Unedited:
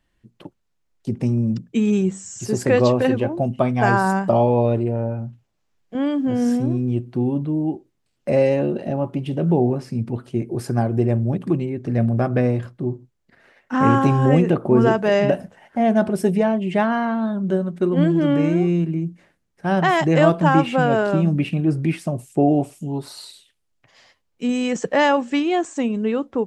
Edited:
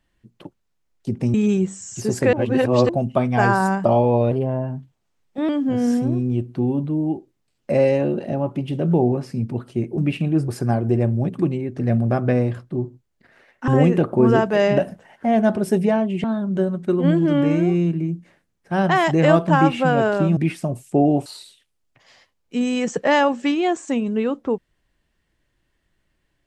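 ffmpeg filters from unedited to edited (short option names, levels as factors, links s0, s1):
-filter_complex "[0:a]asplit=12[s0][s1][s2][s3][s4][s5][s6][s7][s8][s9][s10][s11];[s0]atrim=end=1.342[s12];[s1]atrim=start=1.778:end=2.772[s13];[s2]atrim=start=2.768:end=3.332,asetpts=PTS-STARTPTS,areverse[s14];[s3]atrim=start=3.328:end=4.754[s15];[s4]atrim=start=4.75:end=6.07,asetpts=PTS-STARTPTS,asetrate=49392,aresample=44100[s16];[s5]atrim=start=6.066:end=10.562[s17];[s6]atrim=start=21.298:end=21.802[s18];[s7]atrim=start=10.558:end=13.762[s19];[s8]atrim=start=14.198:end=16.762[s20];[s9]atrim=start=17.168:end=21.302[s21];[s10]atrim=start=21.798:end=22.692[s22];[s11]atrim=start=23.138[s23];[s12][s13]acrossfade=d=0.004:c1=hsin:c2=hsin[s24];[s24][s14]acrossfade=d=0.004:c1=hsin:c2=hsin[s25];[s25][s15]acrossfade=d=0.004:c1=hsin:c2=hsin[s26];[s26][s16]acrossfade=d=0.004:c1=hsin:c2=hsin[s27];[s27][s17]acrossfade=d=0.004:c1=hsin:c2=hsin[s28];[s28][s18]acrossfade=d=0.004:c1=hsin:c2=hsin[s29];[s29][s19]acrossfade=d=0.004:c1=hsin:c2=hsin[s30];[s30][s20]acrossfade=d=0.004:c1=hsin:c2=hsin[s31];[s31][s21]acrossfade=d=0.004:c1=hsin:c2=hsin[s32];[s32][s22]acrossfade=d=0.004:c1=hsin:c2=hsin[s33];[s33][s23]acrossfade=d=0.004:c1=hsin:c2=hsin"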